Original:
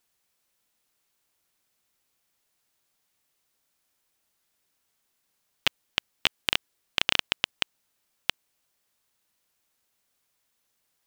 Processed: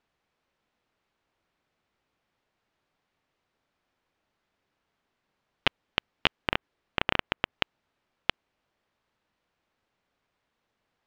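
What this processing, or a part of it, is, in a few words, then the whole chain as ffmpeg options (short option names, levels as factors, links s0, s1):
phone in a pocket: -filter_complex "[0:a]lowpass=3600,highshelf=f=2100:g=-9,asettb=1/sr,asplit=3[s0][s1][s2];[s0]atrim=end=6.404[s3];[s1]atrim=start=6.4:end=7.56,asetpts=PTS-STARTPTS,afade=t=in:d=0.004:c=qsin,afade=t=out:st=1.156:d=0.004:c=qsin,acrossover=split=2800[s4][s5];[s5]acompressor=threshold=0.00562:ratio=4:attack=1:release=60[s6];[s4][s6]amix=inputs=2:normalize=0[s7];[s2]atrim=start=7.556[s8];[s3][s7]acrossfade=d=0.004:c1=hsin:c2=qsin[s9];[s9][s8]acrossfade=d=0.004:c1=qsin:c2=hsin,volume=2"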